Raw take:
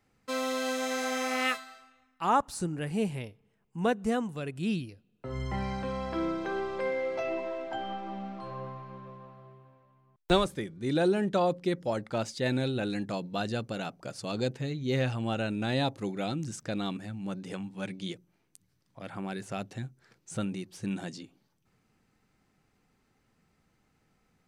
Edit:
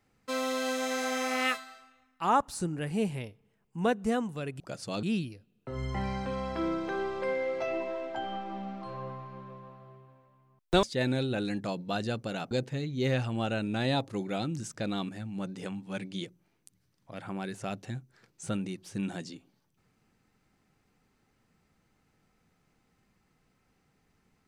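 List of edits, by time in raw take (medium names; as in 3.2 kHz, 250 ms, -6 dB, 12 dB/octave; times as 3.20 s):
10.40–12.28 s: delete
13.96–14.39 s: move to 4.60 s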